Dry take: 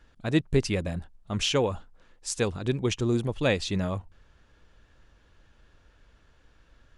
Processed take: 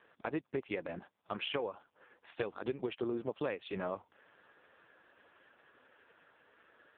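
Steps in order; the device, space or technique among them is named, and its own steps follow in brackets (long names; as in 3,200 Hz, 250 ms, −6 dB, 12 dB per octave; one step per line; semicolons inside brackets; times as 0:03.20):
0:01.69–0:02.31: low-pass filter 4,600 Hz → 2,600 Hz 12 dB per octave
de-essing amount 60%
voicemail (band-pass filter 380–2,700 Hz; downward compressor 8 to 1, threshold −40 dBFS, peak gain reduction 18.5 dB; level +7.5 dB; AMR narrowband 4.75 kbit/s 8,000 Hz)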